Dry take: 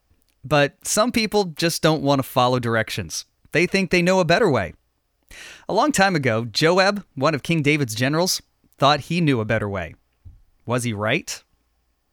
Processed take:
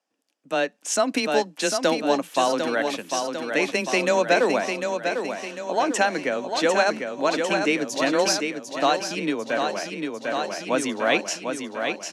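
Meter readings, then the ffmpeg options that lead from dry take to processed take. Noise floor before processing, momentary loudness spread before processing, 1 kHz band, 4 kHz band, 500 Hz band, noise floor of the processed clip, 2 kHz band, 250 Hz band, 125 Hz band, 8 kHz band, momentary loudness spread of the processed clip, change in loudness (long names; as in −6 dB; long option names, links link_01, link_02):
−69 dBFS, 10 LU, −2.0 dB, −3.0 dB, −1.5 dB, −58 dBFS, −2.5 dB, −4.5 dB, −17.5 dB, −1.5 dB, 7 LU, −3.5 dB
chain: -filter_complex "[0:a]highpass=frequency=240:width=0.5412,highpass=frequency=240:width=1.3066,equalizer=frequency=370:width_type=q:width=4:gain=-5,equalizer=frequency=1200:width_type=q:width=4:gain=-5,equalizer=frequency=2100:width_type=q:width=4:gain=-4,equalizer=frequency=4100:width_type=q:width=4:gain=-5,equalizer=frequency=9400:width_type=q:width=4:gain=-5,lowpass=frequency=9900:width=0.5412,lowpass=frequency=9900:width=1.3066,afreqshift=14,asplit=2[link_01][link_02];[link_02]aecho=0:1:749|1498|2247|2996|3745|4494|5243:0.501|0.286|0.163|0.0928|0.0529|0.0302|0.0172[link_03];[link_01][link_03]amix=inputs=2:normalize=0,dynaudnorm=framelen=550:gausssize=3:maxgain=11dB,volume=-6dB"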